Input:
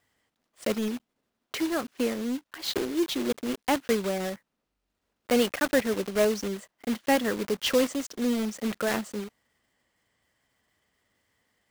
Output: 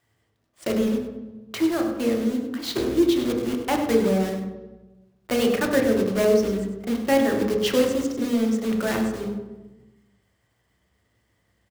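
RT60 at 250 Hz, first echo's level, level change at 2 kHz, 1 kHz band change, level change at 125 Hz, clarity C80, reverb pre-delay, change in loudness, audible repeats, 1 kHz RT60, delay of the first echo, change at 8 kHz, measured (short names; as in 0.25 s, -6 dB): 1.6 s, -10.5 dB, +1.5 dB, +2.5 dB, +9.0 dB, 6.0 dB, 3 ms, +5.0 dB, 1, 1.0 s, 99 ms, +0.5 dB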